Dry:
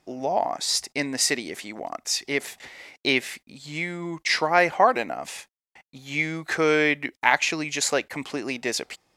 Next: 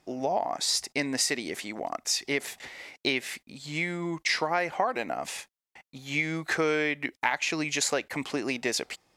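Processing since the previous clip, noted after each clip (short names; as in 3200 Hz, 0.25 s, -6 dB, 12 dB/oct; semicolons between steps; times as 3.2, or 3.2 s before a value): compressor 6:1, threshold -23 dBFS, peak gain reduction 11 dB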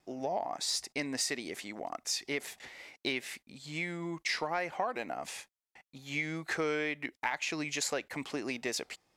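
vibrato 2.2 Hz 28 cents; in parallel at -7 dB: soft clip -19.5 dBFS, distortion -16 dB; on the sum: gain -9 dB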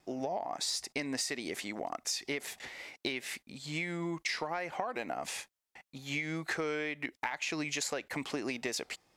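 compressor, threshold -35 dBFS, peak gain reduction 8 dB; gain +3.5 dB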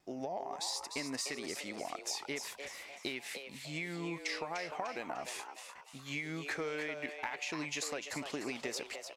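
frequency-shifting echo 0.299 s, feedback 44%, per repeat +140 Hz, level -7.5 dB; gain -4 dB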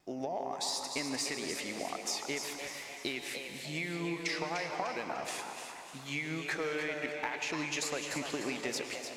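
plate-style reverb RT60 2.9 s, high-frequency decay 0.95×, pre-delay 95 ms, DRR 6.5 dB; gain +2.5 dB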